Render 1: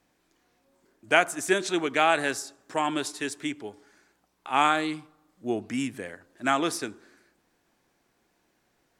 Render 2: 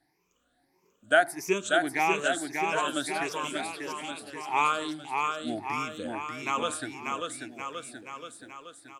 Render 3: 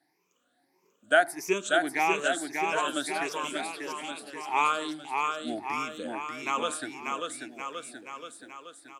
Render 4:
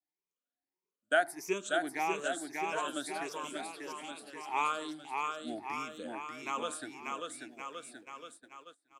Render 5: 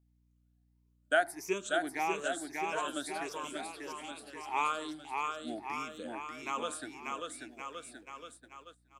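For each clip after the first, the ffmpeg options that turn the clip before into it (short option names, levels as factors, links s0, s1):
-filter_complex "[0:a]afftfilt=real='re*pow(10,18/40*sin(2*PI*(0.79*log(max(b,1)*sr/1024/100)/log(2)-(1.6)*(pts-256)/sr)))':imag='im*pow(10,18/40*sin(2*PI*(0.79*log(max(b,1)*sr/1024/100)/log(2)-(1.6)*(pts-256)/sr)))':win_size=1024:overlap=0.75,asplit=2[s0][s1];[s1]aecho=0:1:590|1121|1599|2029|2416:0.631|0.398|0.251|0.158|0.1[s2];[s0][s2]amix=inputs=2:normalize=0,volume=0.447"
-af "highpass=200"
-af "agate=range=0.0891:threshold=0.00501:ratio=16:detection=peak,adynamicequalizer=threshold=0.00891:dfrequency=2300:dqfactor=1:tfrequency=2300:tqfactor=1:attack=5:release=100:ratio=0.375:range=2.5:mode=cutabove:tftype=bell,volume=0.501"
-af "aeval=exprs='val(0)+0.000355*(sin(2*PI*60*n/s)+sin(2*PI*2*60*n/s)/2+sin(2*PI*3*60*n/s)/3+sin(2*PI*4*60*n/s)/4+sin(2*PI*5*60*n/s)/5)':c=same"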